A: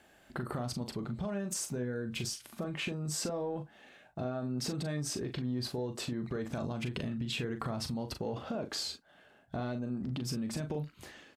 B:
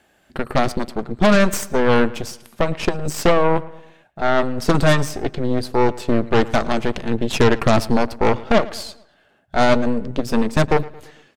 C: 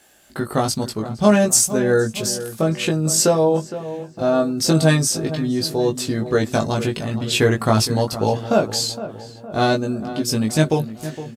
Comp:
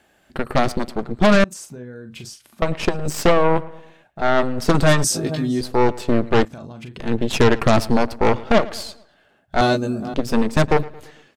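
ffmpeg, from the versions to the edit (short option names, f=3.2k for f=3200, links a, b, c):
-filter_complex "[0:a]asplit=2[a][b];[2:a]asplit=2[c][d];[1:a]asplit=5[e][f][g][h][i];[e]atrim=end=1.442[j];[a]atrim=start=1.438:end=2.622[k];[f]atrim=start=2.618:end=5.042[l];[c]atrim=start=5.038:end=5.612[m];[g]atrim=start=5.608:end=6.452[n];[b]atrim=start=6.448:end=7.002[o];[h]atrim=start=6.998:end=9.612[p];[d]atrim=start=9.608:end=10.142[q];[i]atrim=start=10.138[r];[j][k]acrossfade=d=0.004:c1=hsin:c2=hsin[s];[s][l]acrossfade=d=0.004:c1=hsin:c2=hsin[t];[t][m]acrossfade=d=0.004:c1=hsin:c2=hsin[u];[u][n]acrossfade=d=0.004:c1=hsin:c2=hsin[v];[v][o]acrossfade=d=0.004:c1=hsin:c2=hsin[w];[w][p]acrossfade=d=0.004:c1=hsin:c2=hsin[x];[x][q]acrossfade=d=0.004:c1=hsin:c2=hsin[y];[y][r]acrossfade=d=0.004:c1=hsin:c2=hsin"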